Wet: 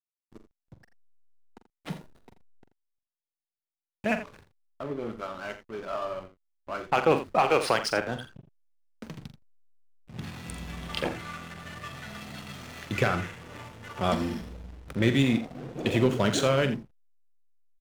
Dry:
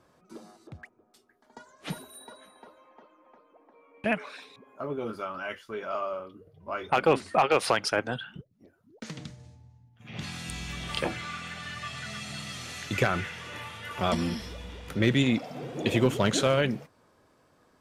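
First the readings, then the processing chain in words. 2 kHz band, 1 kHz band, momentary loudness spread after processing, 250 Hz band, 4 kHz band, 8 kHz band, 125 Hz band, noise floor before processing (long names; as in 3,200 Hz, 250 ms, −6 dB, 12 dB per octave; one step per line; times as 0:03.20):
−1.0 dB, 0.0 dB, 19 LU, +0.5 dB, −1.5 dB, −2.0 dB, +0.5 dB, −65 dBFS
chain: slack as between gear wheels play −33.5 dBFS
multi-tap delay 44/84 ms −10.5/−13 dB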